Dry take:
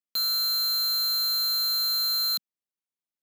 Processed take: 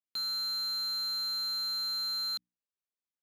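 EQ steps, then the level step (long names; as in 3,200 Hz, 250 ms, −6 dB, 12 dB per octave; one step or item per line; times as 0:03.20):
high-frequency loss of the air 56 metres
mains-hum notches 60/120/180/240/300 Hz
−5.5 dB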